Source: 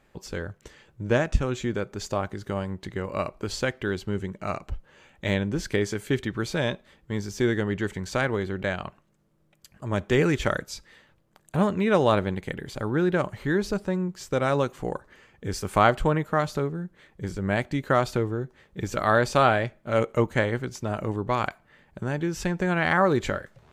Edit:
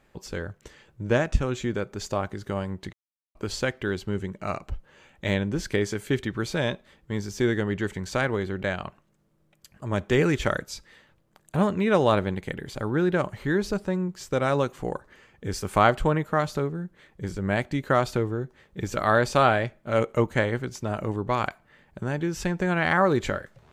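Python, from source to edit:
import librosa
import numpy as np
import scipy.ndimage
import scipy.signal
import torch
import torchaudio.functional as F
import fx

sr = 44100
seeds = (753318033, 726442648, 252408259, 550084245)

y = fx.edit(x, sr, fx.silence(start_s=2.93, length_s=0.42), tone=tone)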